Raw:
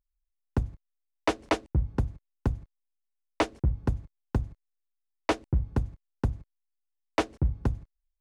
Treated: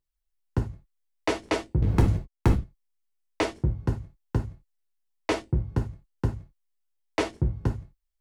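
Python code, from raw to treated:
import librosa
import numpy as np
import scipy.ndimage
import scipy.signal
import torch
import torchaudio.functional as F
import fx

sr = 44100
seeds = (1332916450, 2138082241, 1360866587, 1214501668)

y = fx.leveller(x, sr, passes=5, at=(1.82, 2.55))
y = fx.dynamic_eq(y, sr, hz=1100.0, q=0.82, threshold_db=-39.0, ratio=4.0, max_db=-4)
y = fx.rev_gated(y, sr, seeds[0], gate_ms=110, shape='falling', drr_db=1.0)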